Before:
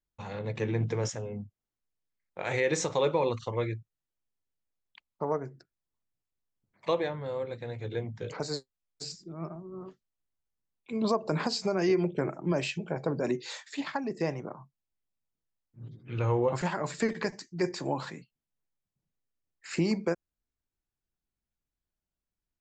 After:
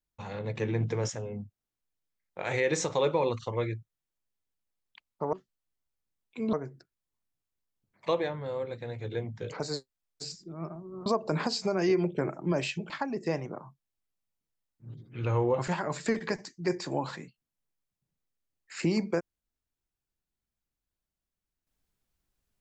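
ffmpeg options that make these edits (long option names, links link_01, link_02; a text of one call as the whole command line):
ffmpeg -i in.wav -filter_complex "[0:a]asplit=5[link_01][link_02][link_03][link_04][link_05];[link_01]atrim=end=5.332[link_06];[link_02]atrim=start=9.858:end=11.062[link_07];[link_03]atrim=start=5.328:end=9.862[link_08];[link_04]atrim=start=11.058:end=12.902[link_09];[link_05]atrim=start=13.838[link_10];[link_06][link_07]acrossfade=duration=0.004:curve1=hsin:curve2=hsin[link_11];[link_11][link_08]acrossfade=duration=0.004:curve1=hsin:curve2=hsin[link_12];[link_12][link_09]acrossfade=duration=0.004:curve1=hsin:curve2=hsin[link_13];[link_13][link_10]acrossfade=duration=0.004:curve1=hsin:curve2=hsin" out.wav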